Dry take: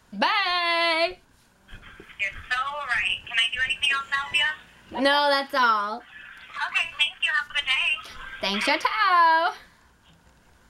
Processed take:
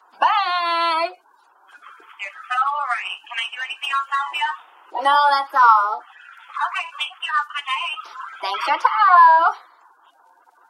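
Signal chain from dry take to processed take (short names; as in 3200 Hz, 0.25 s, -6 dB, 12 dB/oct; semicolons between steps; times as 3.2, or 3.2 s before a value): bin magnitudes rounded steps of 30 dB; steep high-pass 320 Hz 48 dB/oct; band shelf 1000 Hz +13.5 dB 1.1 oct; gain -3 dB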